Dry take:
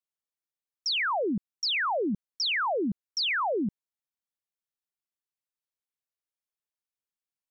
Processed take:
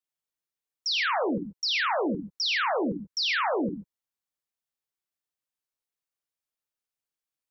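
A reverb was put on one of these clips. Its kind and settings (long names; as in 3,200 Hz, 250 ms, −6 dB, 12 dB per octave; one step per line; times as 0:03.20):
reverb whose tail is shaped and stops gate 160 ms flat, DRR 4.5 dB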